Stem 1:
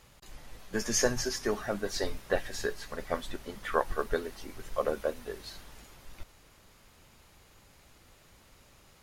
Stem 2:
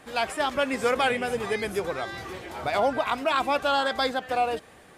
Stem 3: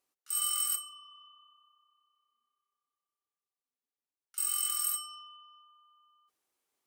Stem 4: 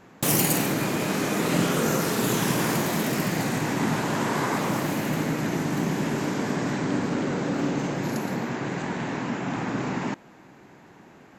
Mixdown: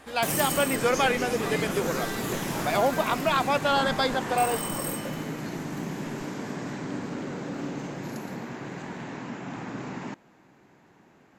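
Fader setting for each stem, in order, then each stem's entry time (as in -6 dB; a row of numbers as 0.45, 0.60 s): -9.0, 0.0, -3.5, -7.5 dB; 0.00, 0.00, 0.00, 0.00 s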